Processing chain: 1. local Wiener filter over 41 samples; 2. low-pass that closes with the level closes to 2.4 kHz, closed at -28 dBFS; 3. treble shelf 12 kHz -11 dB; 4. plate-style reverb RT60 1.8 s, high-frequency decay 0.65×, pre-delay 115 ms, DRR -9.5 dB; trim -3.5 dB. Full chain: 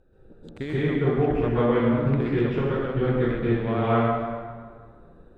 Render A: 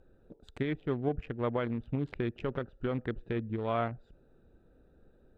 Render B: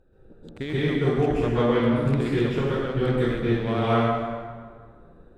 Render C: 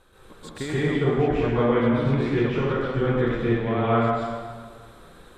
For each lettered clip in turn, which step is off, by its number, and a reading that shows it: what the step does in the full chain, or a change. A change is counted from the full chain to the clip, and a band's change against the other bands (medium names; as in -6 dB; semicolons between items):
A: 4, momentary loudness spread change -6 LU; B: 2, 4 kHz band +6.5 dB; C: 1, 4 kHz band +4.0 dB